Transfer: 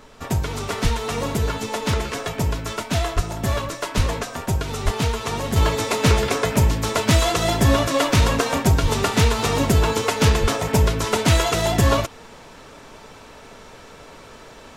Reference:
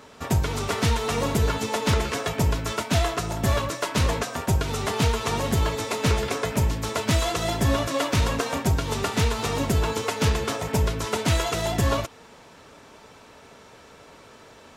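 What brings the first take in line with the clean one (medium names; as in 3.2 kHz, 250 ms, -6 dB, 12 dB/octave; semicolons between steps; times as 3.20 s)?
de-plosive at 0.83/3.15/3.96/4.84/8.82/10.41 s; expander -35 dBFS, range -21 dB; trim 0 dB, from 5.56 s -5.5 dB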